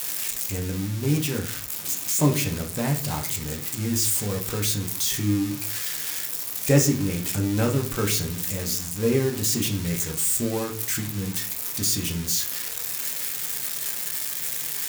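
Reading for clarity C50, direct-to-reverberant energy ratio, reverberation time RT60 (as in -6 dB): 10.5 dB, 1.0 dB, 0.45 s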